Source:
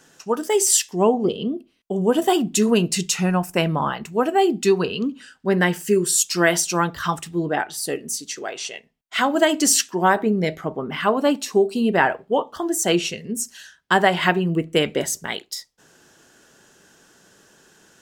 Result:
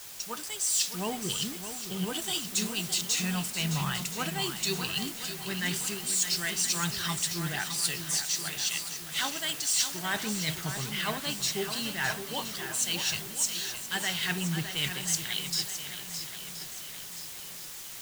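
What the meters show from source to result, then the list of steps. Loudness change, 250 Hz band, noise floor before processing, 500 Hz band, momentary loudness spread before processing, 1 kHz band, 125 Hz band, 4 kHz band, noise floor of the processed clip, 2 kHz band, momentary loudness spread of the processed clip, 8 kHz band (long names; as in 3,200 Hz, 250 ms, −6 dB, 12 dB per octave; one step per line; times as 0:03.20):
−9.0 dB, −14.5 dB, −59 dBFS, −20.5 dB, 11 LU, −15.5 dB, −8.0 dB, −2.0 dB, −42 dBFS, −8.5 dB, 9 LU, −5.0 dB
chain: graphic EQ with 10 bands 125 Hz +11 dB, 250 Hz −10 dB, 500 Hz −12 dB, 1,000 Hz −5 dB, 2,000 Hz +3 dB, 4,000 Hz +12 dB, 8,000 Hz +8 dB
soft clipping −7 dBFS, distortion −12 dB
high-shelf EQ 4,700 Hz +5 dB
reversed playback
downward compressor 6 to 1, threshold −24 dBFS, peak gain reduction 16.5 dB
reversed playback
bit-depth reduction 6 bits, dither triangular
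feedback echo with a long and a short gap by turns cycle 1,024 ms, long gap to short 1.5 to 1, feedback 47%, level −8 dB
multiband upward and downward expander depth 40%
level −5 dB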